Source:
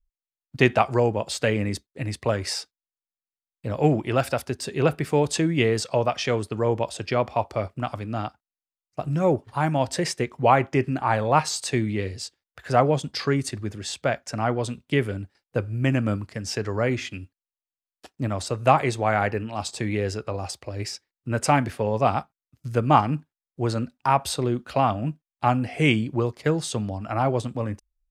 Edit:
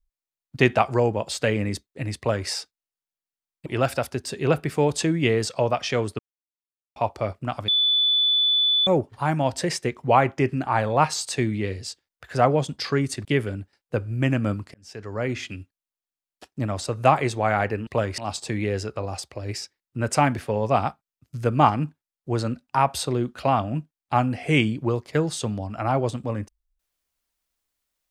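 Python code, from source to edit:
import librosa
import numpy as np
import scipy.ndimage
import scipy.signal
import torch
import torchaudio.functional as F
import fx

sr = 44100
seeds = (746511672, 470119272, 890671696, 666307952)

y = fx.edit(x, sr, fx.duplicate(start_s=2.18, length_s=0.31, to_s=19.49),
    fx.cut(start_s=3.66, length_s=0.35),
    fx.silence(start_s=6.54, length_s=0.77),
    fx.bleep(start_s=8.03, length_s=1.19, hz=3480.0, db=-17.0),
    fx.cut(start_s=13.6, length_s=1.27),
    fx.fade_in_span(start_s=16.36, length_s=0.73), tone=tone)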